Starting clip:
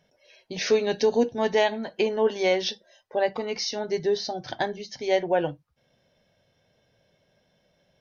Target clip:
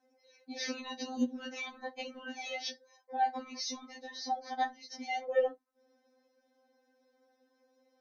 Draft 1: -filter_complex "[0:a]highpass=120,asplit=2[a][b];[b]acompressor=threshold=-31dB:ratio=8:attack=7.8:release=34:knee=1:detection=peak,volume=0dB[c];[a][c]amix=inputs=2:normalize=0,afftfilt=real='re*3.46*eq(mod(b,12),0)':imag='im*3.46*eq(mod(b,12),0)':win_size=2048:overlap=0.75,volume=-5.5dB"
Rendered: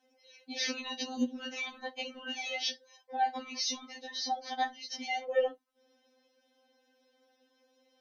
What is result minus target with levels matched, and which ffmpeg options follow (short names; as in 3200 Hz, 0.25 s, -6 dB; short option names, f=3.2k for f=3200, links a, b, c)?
4000 Hz band +4.0 dB
-filter_complex "[0:a]highpass=120,asplit=2[a][b];[b]acompressor=threshold=-31dB:ratio=8:attack=7.8:release=34:knee=1:detection=peak,lowpass=f=3.1k:w=0.5412,lowpass=f=3.1k:w=1.3066[c];[a][c]amix=inputs=2:normalize=0,afftfilt=real='re*3.46*eq(mod(b,12),0)':imag='im*3.46*eq(mod(b,12),0)':win_size=2048:overlap=0.75,volume=-5.5dB"